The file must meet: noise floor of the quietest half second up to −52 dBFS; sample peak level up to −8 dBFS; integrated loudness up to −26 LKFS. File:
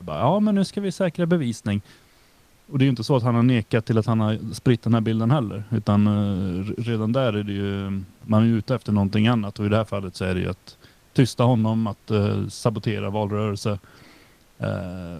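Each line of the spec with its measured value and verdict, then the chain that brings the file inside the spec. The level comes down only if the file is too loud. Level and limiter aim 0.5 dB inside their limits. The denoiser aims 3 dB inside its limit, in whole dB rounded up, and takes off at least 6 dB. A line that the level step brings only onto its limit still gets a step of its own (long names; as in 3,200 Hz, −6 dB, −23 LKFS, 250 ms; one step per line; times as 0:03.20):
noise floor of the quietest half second −56 dBFS: in spec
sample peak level −5.5 dBFS: out of spec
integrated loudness −23.0 LKFS: out of spec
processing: level −3.5 dB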